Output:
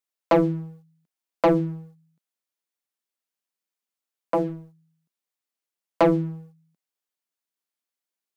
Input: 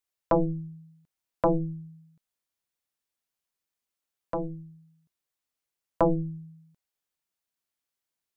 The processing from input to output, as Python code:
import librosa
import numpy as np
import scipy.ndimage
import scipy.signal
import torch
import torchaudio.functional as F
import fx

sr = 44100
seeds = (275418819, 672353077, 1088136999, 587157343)

y = scipy.signal.sosfilt(scipy.signal.butter(4, 180.0, 'highpass', fs=sr, output='sos'), x)
y = fx.leveller(y, sr, passes=2)
y = F.gain(torch.from_numpy(y), 1.5).numpy()